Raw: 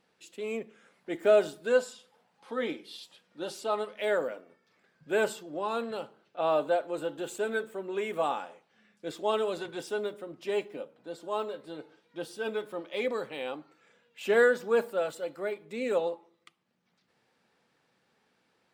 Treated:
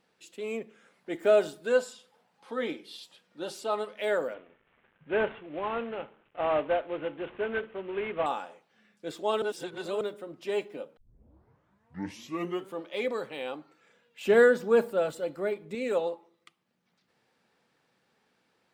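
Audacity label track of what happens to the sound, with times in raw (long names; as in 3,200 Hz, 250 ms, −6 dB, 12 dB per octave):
4.340000	8.260000	variable-slope delta modulation 16 kbit/s
9.420000	10.010000	reverse
10.970000	10.970000	tape start 1.87 s
14.250000	15.750000	low-shelf EQ 330 Hz +9.5 dB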